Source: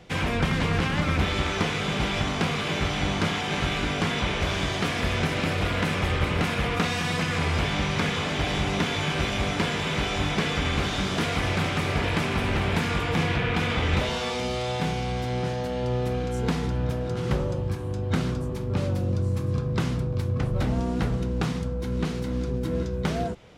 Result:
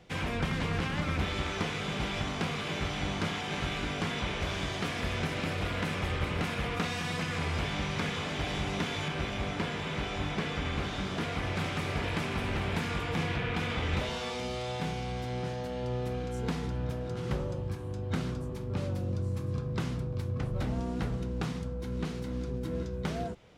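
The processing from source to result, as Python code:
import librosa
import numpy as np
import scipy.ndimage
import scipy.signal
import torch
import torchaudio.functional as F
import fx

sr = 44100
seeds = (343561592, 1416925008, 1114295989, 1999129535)

y = fx.high_shelf(x, sr, hz=4100.0, db=-6.5, at=(9.08, 11.56))
y = y * librosa.db_to_amplitude(-7.0)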